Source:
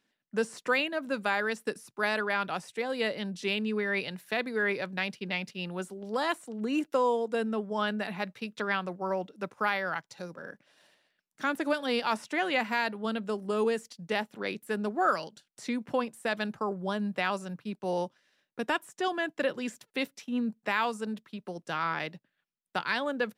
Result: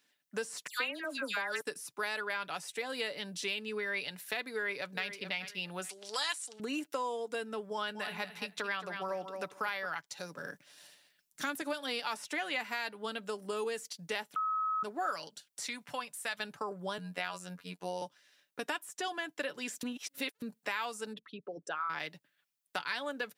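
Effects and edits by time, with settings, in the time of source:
0.67–1.61 s: phase dispersion lows, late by 122 ms, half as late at 2.1 kHz
4.51–5.05 s: echo throw 430 ms, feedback 20%, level -13 dB
5.89–6.60 s: frequency weighting ITU-R 468
7.73–9.86 s: feedback delay 221 ms, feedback 16%, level -10.5 dB
10.36–11.62 s: tone controls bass +8 dB, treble +5 dB
14.36–14.83 s: bleep 1.28 kHz -24 dBFS
15.66–16.40 s: peaking EQ 340 Hz -14.5 dB 1.3 oct
16.98–18.02 s: robot voice 90.2 Hz
19.83–20.42 s: reverse
21.13–21.90 s: resonances exaggerated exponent 2
whole clip: tilt EQ +2.5 dB/octave; comb 6.9 ms, depth 34%; compression 2.5:1, threshold -36 dBFS

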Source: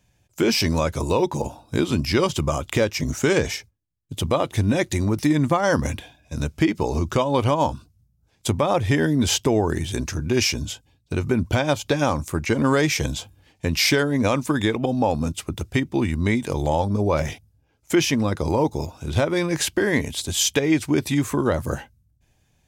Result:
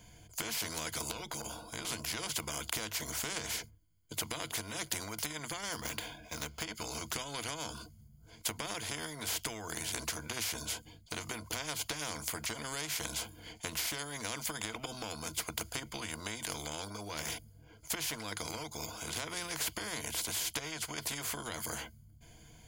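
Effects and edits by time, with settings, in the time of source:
1.11–1.85 s: compression, threshold -28 dBFS
5.72–6.64 s: median filter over 5 samples
whole clip: rippled EQ curve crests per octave 1.8, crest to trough 13 dB; compression, threshold -20 dBFS; spectrum-flattening compressor 4:1; trim -5 dB

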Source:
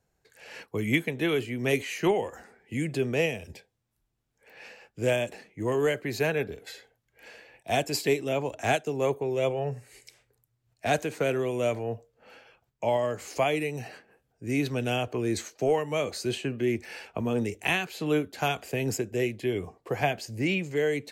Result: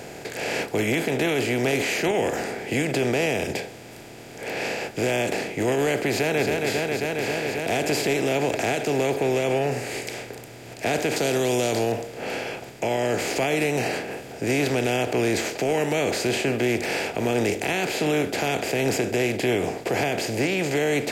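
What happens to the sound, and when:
6.10–6.51 s: echo throw 270 ms, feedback 75%, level -12.5 dB
11.16–11.92 s: resonant high shelf 3.1 kHz +11.5 dB, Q 3
whole clip: spectral levelling over time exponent 0.4; band-stop 1.1 kHz, Q 6.8; peak limiter -14 dBFS

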